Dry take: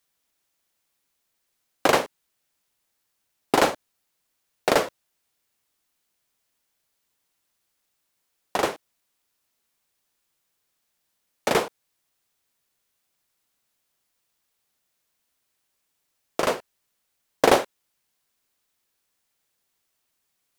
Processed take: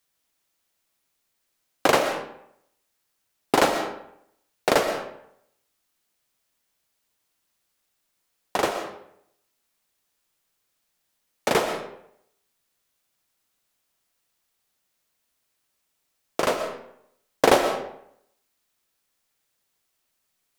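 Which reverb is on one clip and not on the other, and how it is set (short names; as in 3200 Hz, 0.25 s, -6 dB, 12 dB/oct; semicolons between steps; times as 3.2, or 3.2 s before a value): digital reverb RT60 0.72 s, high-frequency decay 0.7×, pre-delay 85 ms, DRR 7 dB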